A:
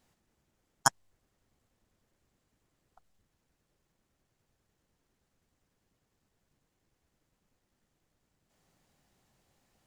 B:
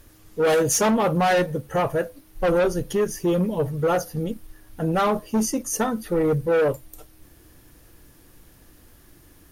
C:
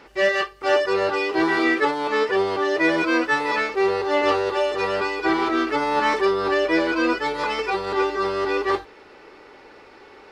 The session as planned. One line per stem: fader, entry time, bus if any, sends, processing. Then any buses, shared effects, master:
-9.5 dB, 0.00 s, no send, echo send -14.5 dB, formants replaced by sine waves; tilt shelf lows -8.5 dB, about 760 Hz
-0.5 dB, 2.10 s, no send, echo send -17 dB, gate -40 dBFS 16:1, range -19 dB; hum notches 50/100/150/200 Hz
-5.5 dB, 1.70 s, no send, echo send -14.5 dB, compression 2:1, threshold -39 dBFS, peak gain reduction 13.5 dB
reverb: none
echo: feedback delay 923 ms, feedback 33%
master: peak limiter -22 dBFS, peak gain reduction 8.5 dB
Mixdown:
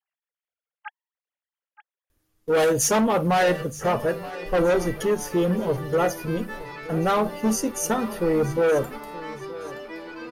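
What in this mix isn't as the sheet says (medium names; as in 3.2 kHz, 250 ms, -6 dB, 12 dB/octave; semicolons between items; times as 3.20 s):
stem A -9.5 dB -> -15.5 dB; stem C: entry 1.70 s -> 3.20 s; master: missing peak limiter -22 dBFS, peak gain reduction 8.5 dB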